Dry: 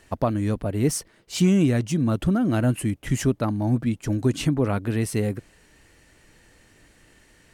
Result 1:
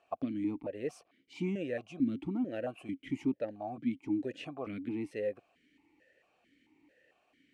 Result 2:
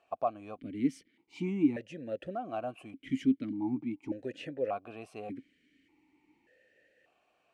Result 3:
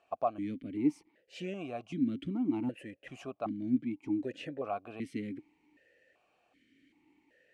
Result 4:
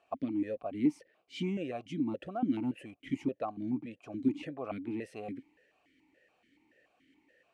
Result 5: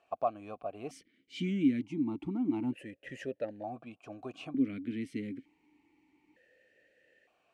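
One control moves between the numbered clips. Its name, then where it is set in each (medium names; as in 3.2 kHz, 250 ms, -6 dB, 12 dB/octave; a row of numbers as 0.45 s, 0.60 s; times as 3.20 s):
stepped vowel filter, rate: 4.5 Hz, 1.7 Hz, 2.6 Hz, 7 Hz, 1.1 Hz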